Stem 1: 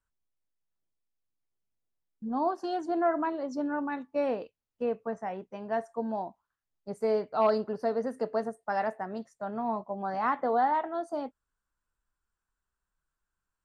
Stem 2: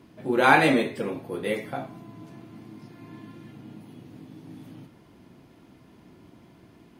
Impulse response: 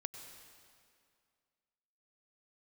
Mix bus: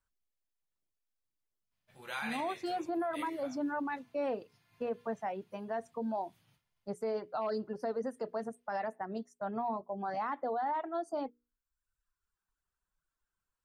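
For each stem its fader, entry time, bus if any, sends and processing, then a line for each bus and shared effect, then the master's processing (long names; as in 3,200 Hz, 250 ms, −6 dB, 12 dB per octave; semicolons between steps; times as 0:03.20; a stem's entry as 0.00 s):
−0.5 dB, 0.00 s, no send, mains-hum notches 60/120/180/240/300/360/420/480 Hz; reverb reduction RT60 0.95 s
−7.5 dB, 1.70 s, no send, guitar amp tone stack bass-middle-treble 10-0-10; downward expander −57 dBFS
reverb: not used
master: brickwall limiter −27.5 dBFS, peak gain reduction 11 dB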